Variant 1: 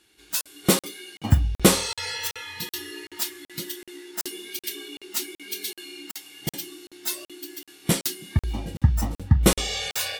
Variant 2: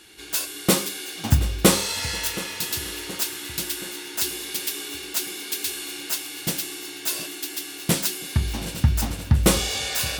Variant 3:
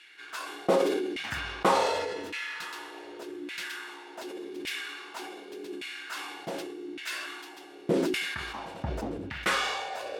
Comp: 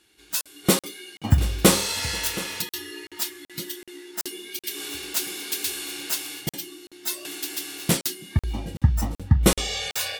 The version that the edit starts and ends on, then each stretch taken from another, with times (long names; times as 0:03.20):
1
0:01.38–0:02.62: punch in from 2
0:04.76–0:06.41: punch in from 2, crossfade 0.16 s
0:07.25–0:07.97: punch in from 2
not used: 3